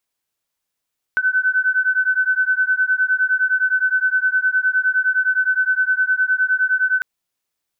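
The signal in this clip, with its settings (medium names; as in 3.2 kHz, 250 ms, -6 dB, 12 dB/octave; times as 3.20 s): beating tones 1.51 kHz, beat 9.7 Hz, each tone -18 dBFS 5.85 s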